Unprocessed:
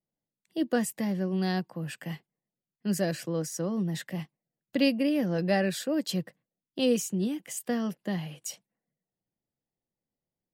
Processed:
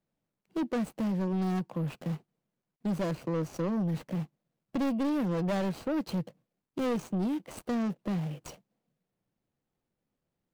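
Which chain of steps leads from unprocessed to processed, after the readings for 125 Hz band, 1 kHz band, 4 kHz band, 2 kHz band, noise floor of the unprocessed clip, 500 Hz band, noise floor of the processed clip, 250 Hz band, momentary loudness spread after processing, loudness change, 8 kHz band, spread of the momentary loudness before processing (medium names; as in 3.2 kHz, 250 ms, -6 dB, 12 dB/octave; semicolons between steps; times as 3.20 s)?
+0.5 dB, 0.0 dB, -10.5 dB, -7.5 dB, under -85 dBFS, -4.0 dB, under -85 dBFS, -1.5 dB, 9 LU, -2.5 dB, -14.0 dB, 13 LU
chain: median filter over 25 samples; in parallel at +2.5 dB: compression, threshold -35 dBFS, peak gain reduction 14 dB; on the sum: saturation -26 dBFS, distortion -10 dB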